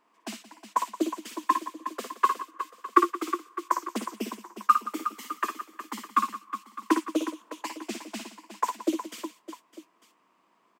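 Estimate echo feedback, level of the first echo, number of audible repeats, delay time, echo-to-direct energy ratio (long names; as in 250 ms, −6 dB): repeats not evenly spaced, −7.5 dB, 5, 57 ms, −4.5 dB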